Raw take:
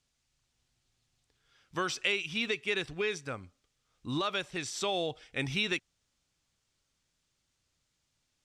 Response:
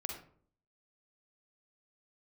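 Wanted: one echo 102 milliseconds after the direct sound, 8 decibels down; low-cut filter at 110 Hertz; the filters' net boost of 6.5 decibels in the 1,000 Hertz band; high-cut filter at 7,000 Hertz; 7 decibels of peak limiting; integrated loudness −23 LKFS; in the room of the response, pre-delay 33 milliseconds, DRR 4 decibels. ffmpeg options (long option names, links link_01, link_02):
-filter_complex "[0:a]highpass=110,lowpass=7000,equalizer=frequency=1000:width_type=o:gain=8.5,alimiter=limit=-21dB:level=0:latency=1,aecho=1:1:102:0.398,asplit=2[link_01][link_02];[1:a]atrim=start_sample=2205,adelay=33[link_03];[link_02][link_03]afir=irnorm=-1:irlink=0,volume=-4dB[link_04];[link_01][link_04]amix=inputs=2:normalize=0,volume=8.5dB"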